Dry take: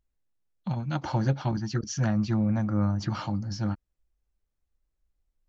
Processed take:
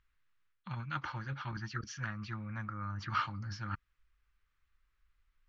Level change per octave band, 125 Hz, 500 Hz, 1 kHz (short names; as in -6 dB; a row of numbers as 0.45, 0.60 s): -13.0, -19.0, -3.0 dB